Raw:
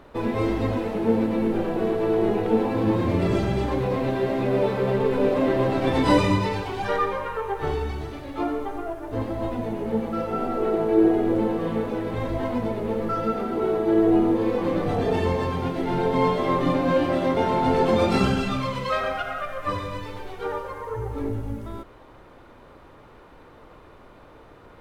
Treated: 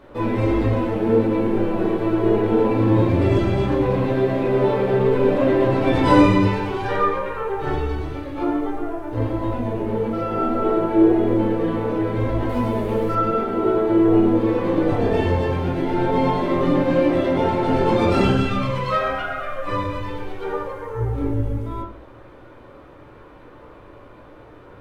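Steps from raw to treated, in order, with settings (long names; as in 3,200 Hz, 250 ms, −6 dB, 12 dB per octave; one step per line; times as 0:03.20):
0:12.49–0:13.15: high-shelf EQ 4,300 Hz +10 dB
convolution reverb RT60 0.40 s, pre-delay 8 ms, DRR −4.5 dB
level −2.5 dB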